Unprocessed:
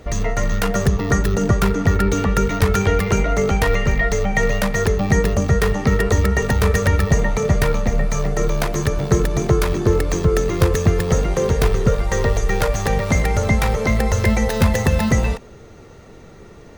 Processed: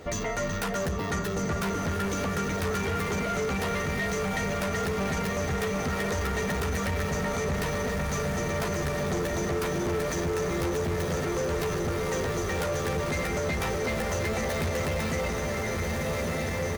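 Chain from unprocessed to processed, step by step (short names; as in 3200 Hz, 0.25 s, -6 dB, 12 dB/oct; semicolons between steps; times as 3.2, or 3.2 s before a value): low shelf 88 Hz -11 dB; notches 50/100 Hz; doubler 12 ms -4 dB; diffused feedback echo 1.447 s, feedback 64%, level -5 dB; soft clip -18 dBFS, distortion -10 dB; split-band echo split 920 Hz, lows 0.455 s, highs 0.14 s, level -15 dB; limiter -22 dBFS, peak gain reduction 7 dB; gain -1.5 dB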